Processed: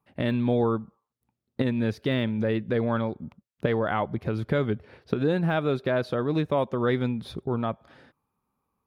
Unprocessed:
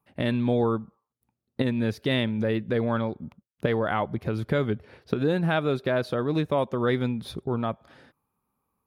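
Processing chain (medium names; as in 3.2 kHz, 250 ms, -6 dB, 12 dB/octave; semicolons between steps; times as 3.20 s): de-esser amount 90%; treble shelf 7.6 kHz -8 dB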